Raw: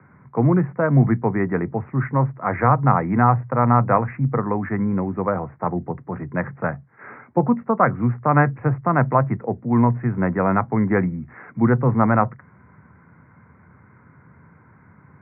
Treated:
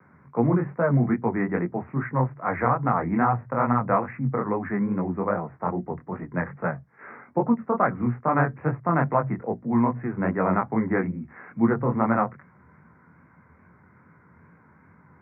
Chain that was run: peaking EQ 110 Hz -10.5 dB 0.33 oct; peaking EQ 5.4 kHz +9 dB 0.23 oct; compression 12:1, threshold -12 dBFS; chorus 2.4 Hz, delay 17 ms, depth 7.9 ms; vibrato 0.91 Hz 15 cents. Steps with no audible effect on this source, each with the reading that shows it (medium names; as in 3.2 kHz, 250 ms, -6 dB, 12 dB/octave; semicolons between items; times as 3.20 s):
peaking EQ 5.4 kHz: input has nothing above 2 kHz